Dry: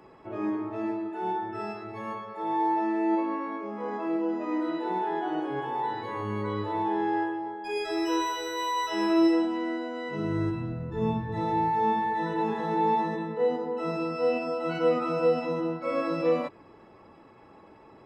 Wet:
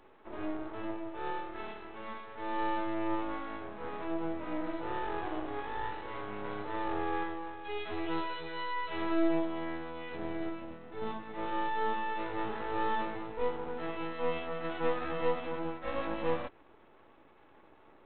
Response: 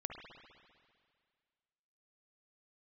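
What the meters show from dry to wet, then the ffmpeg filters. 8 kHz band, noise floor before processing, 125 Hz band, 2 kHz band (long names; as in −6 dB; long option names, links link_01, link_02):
can't be measured, −53 dBFS, −12.0 dB, −3.0 dB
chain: -af "highpass=frequency=240:width=0.5412,highpass=frequency=240:width=1.3066,aresample=8000,aeval=exprs='max(val(0),0)':channel_layout=same,aresample=44100,volume=-2.5dB"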